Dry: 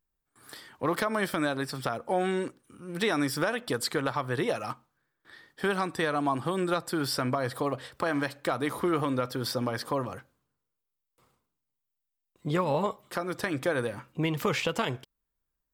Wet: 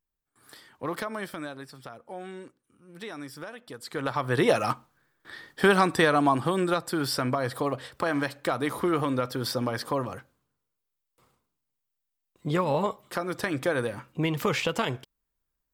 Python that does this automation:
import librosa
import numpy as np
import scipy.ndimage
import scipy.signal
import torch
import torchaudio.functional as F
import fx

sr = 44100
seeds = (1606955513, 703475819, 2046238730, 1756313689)

y = fx.gain(x, sr, db=fx.line((1.0, -4.0), (1.78, -12.0), (3.83, -12.0), (4.01, -1.0), (4.53, 8.0), (5.91, 8.0), (6.82, 1.5)))